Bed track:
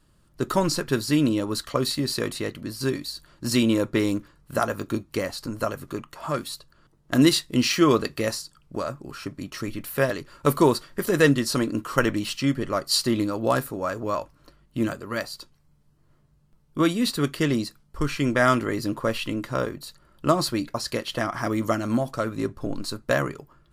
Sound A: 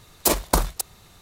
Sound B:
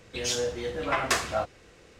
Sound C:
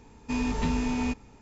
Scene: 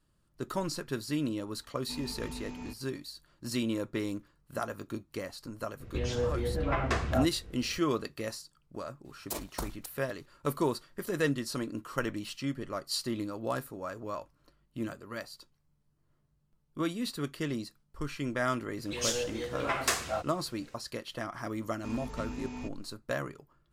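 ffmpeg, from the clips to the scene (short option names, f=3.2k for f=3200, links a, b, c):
-filter_complex "[3:a]asplit=2[a][b];[2:a]asplit=2[c][d];[0:a]volume=-11dB[e];[c]aemphasis=mode=reproduction:type=riaa[f];[d]highshelf=f=7.7k:g=10.5[g];[a]atrim=end=1.41,asetpts=PTS-STARTPTS,volume=-14.5dB,afade=t=in:d=0.004:c=hsin,afade=t=out:st=1.406:d=0.004:c=hsin,adelay=1600[h];[f]atrim=end=1.99,asetpts=PTS-STARTPTS,volume=-4.5dB,afade=t=in:d=0.004:c=hsin,afade=t=out:st=1.986:d=0.004:c=hsin,adelay=5800[i];[1:a]atrim=end=1.21,asetpts=PTS-STARTPTS,volume=-17.5dB,afade=t=in:d=0.004:c=hsin,afade=t=out:st=1.206:d=0.004:c=hsin,adelay=9050[j];[g]atrim=end=1.99,asetpts=PTS-STARTPTS,volume=-5dB,afade=t=in:d=0.004:c=hsin,afade=t=out:st=1.986:d=0.004:c=hsin,adelay=18770[k];[b]atrim=end=1.41,asetpts=PTS-STARTPTS,volume=-12.5dB,afade=t=in:d=0.004:c=hsin,afade=t=out:st=1.406:d=0.004:c=hsin,adelay=21550[l];[e][h][i][j][k][l]amix=inputs=6:normalize=0"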